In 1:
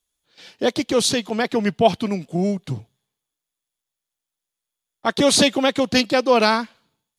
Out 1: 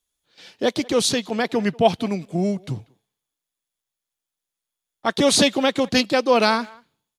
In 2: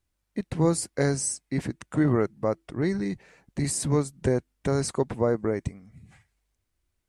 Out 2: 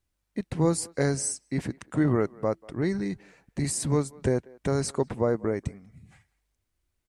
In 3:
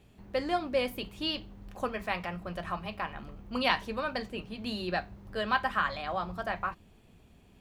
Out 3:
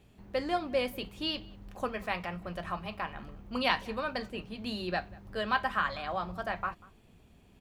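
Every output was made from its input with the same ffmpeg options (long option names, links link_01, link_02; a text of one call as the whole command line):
ffmpeg -i in.wav -filter_complex "[0:a]asplit=2[link_01][link_02];[link_02]adelay=190,highpass=300,lowpass=3400,asoftclip=type=hard:threshold=-9.5dB,volume=-23dB[link_03];[link_01][link_03]amix=inputs=2:normalize=0,volume=-1dB" out.wav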